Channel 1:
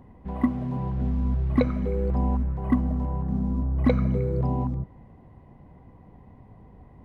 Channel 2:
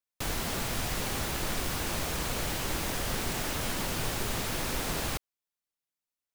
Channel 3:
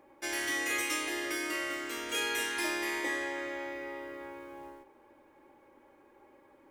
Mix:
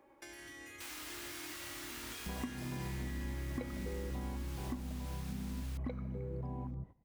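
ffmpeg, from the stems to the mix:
-filter_complex "[0:a]agate=range=0.126:threshold=0.0126:ratio=16:detection=peak,adelay=2000,volume=0.473[s0];[1:a]highpass=1200,adelay=600,volume=0.266[s1];[2:a]asubboost=boost=12:cutoff=160,alimiter=level_in=1.78:limit=0.0631:level=0:latency=1,volume=0.562,acrossover=split=290[s2][s3];[s3]acompressor=threshold=0.00501:ratio=6[s4];[s2][s4]amix=inputs=2:normalize=0,volume=0.596[s5];[s0][s1]amix=inputs=2:normalize=0,acompressor=threshold=0.0126:ratio=6,volume=1[s6];[s5][s6]amix=inputs=2:normalize=0"

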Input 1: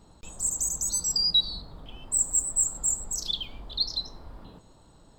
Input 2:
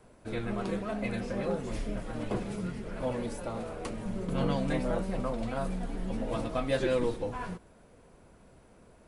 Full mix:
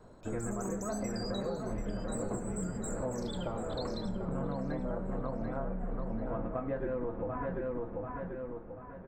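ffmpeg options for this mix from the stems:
-filter_complex "[0:a]acompressor=threshold=0.0282:ratio=6,volume=0.316,asplit=2[s0][s1];[s1]volume=0.224[s2];[1:a]lowpass=f=1600:w=0.5412,lowpass=f=1600:w=1.3066,volume=1.26,asplit=2[s3][s4];[s4]volume=0.473[s5];[s2][s5]amix=inputs=2:normalize=0,aecho=0:1:739|1478|2217|2956|3695:1|0.37|0.137|0.0507|0.0187[s6];[s0][s3][s6]amix=inputs=3:normalize=0,acompressor=threshold=0.0251:ratio=6"

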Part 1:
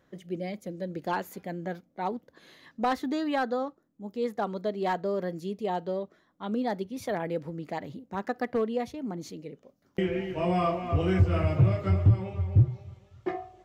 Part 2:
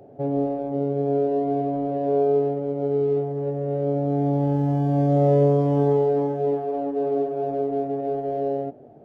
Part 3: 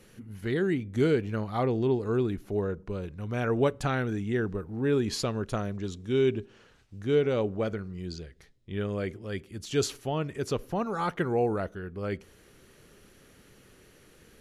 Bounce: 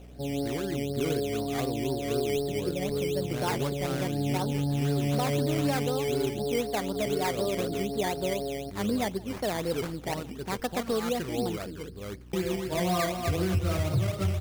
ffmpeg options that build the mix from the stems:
-filter_complex "[0:a]adelay=2350,volume=1.12,asplit=2[s0][s1];[s1]volume=0.0631[s2];[1:a]lowshelf=f=300:g=7,volume=0.282[s3];[2:a]lowpass=8300,bandreject=f=92.33:t=h:w=4,bandreject=f=184.66:t=h:w=4,bandreject=f=276.99:t=h:w=4,bandreject=f=369.32:t=h:w=4,bandreject=f=461.65:t=h:w=4,aeval=exprs='val(0)+0.01*(sin(2*PI*60*n/s)+sin(2*PI*2*60*n/s)/2+sin(2*PI*3*60*n/s)/3+sin(2*PI*4*60*n/s)/4+sin(2*PI*5*60*n/s)/5)':c=same,volume=0.473[s4];[s2]aecho=0:1:166|332|498|664|830|996|1162:1|0.5|0.25|0.125|0.0625|0.0312|0.0156[s5];[s0][s3][s4][s5]amix=inputs=4:normalize=0,acrusher=samples=13:mix=1:aa=0.000001:lfo=1:lforange=7.8:lforate=4,alimiter=limit=0.106:level=0:latency=1:release=118"

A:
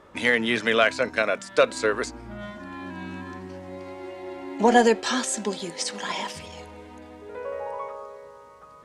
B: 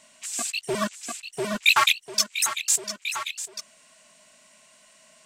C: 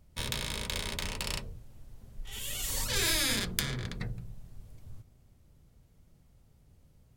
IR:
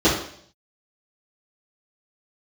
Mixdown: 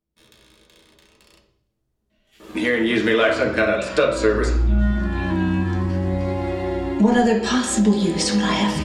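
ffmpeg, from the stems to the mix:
-filter_complex "[0:a]bandreject=f=6200:w=16,asubboost=boost=8:cutoff=130,dynaudnorm=f=290:g=3:m=3.55,adelay=2400,volume=1.26,asplit=2[s0][s1];[s1]volume=0.126[s2];[1:a]lowpass=f=3900:w=0.5412,lowpass=f=3900:w=1.3066,equalizer=f=980:t=o:w=1:g=-12.5,adelay=2100,volume=0.188,asplit=2[s3][s4];[s4]volume=0.224[s5];[2:a]lowshelf=f=150:g=-11,volume=0.106,asplit=2[s6][s7];[s7]volume=0.0944[s8];[3:a]atrim=start_sample=2205[s9];[s2][s5][s8]amix=inputs=3:normalize=0[s10];[s10][s9]afir=irnorm=-1:irlink=0[s11];[s0][s3][s6][s11]amix=inputs=4:normalize=0,acompressor=threshold=0.0708:ratio=2"

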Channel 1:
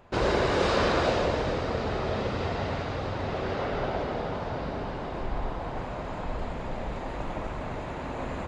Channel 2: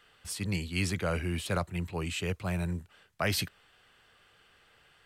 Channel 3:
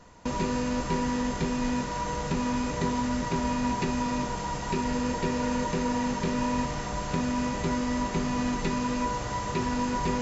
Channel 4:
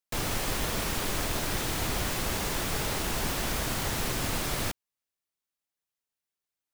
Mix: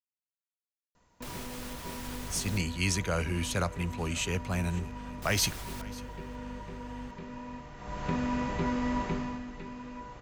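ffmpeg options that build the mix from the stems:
-filter_complex "[1:a]equalizer=f=6300:w=5:g=12,aeval=exprs='val(0)+0.00562*(sin(2*PI*50*n/s)+sin(2*PI*2*50*n/s)/2+sin(2*PI*3*50*n/s)/3+sin(2*PI*4*50*n/s)/4+sin(2*PI*5*50*n/s)/5)':c=same,adelay=2050,volume=1.26,asplit=2[s0][s1];[s1]volume=0.0891[s2];[2:a]acrossover=split=3400[s3][s4];[s4]acompressor=threshold=0.00141:ratio=4:attack=1:release=60[s5];[s3][s5]amix=inputs=2:normalize=0,adelay=950,volume=0.944,afade=t=in:st=7.76:d=0.35:silence=0.237137,afade=t=out:st=9.04:d=0.39:silence=0.237137,asplit=2[s6][s7];[s7]volume=0.119[s8];[3:a]alimiter=level_in=1.5:limit=0.0631:level=0:latency=1:release=401,volume=0.668,adelay=1100,volume=0.631,asplit=3[s9][s10][s11];[s9]atrim=end=2.58,asetpts=PTS-STARTPTS,afade=t=out:st=2.576:d=0.004:c=hsin[s12];[s10]atrim=start=2.58:end=5.22,asetpts=PTS-STARTPTS,volume=0[s13];[s11]atrim=start=5.22,asetpts=PTS-STARTPTS,afade=t=in:d=0.004:c=hsin[s14];[s12][s13][s14]concat=n=3:v=0:a=1,asplit=2[s15][s16];[s16]volume=0.0668[s17];[s2][s8][s17]amix=inputs=3:normalize=0,aecho=0:1:544:1[s18];[s0][s6][s15][s18]amix=inputs=4:normalize=0,equalizer=f=370:w=0.32:g=-2.5"

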